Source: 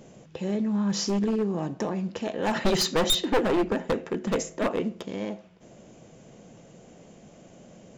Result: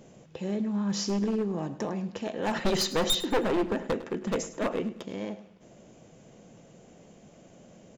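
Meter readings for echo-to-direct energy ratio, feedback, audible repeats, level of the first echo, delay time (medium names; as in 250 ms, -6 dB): -15.5 dB, 38%, 3, -16.0 dB, 104 ms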